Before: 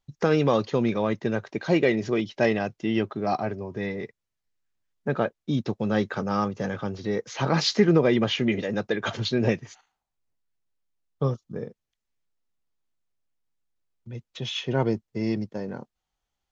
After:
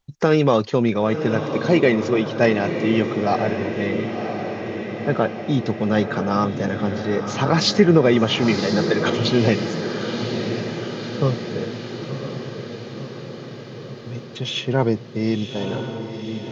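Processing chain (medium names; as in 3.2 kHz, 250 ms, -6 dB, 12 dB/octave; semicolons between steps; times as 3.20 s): 11.64–14.26 s: treble shelf 5.8 kHz +9.5 dB; echo that smears into a reverb 1026 ms, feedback 64%, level -7.5 dB; trim +5 dB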